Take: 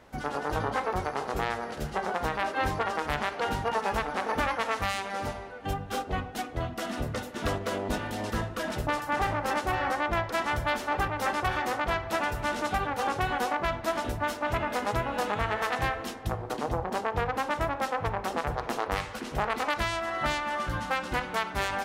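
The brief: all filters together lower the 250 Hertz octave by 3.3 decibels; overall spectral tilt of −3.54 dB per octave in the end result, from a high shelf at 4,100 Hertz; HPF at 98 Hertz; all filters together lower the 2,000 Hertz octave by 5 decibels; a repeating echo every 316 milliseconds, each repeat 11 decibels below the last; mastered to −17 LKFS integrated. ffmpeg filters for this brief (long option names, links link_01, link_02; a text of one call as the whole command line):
ffmpeg -i in.wav -af "highpass=98,equalizer=frequency=250:width_type=o:gain=-4,equalizer=frequency=2000:width_type=o:gain=-5.5,highshelf=frequency=4100:gain=-5.5,aecho=1:1:316|632|948:0.282|0.0789|0.0221,volume=15.5dB" out.wav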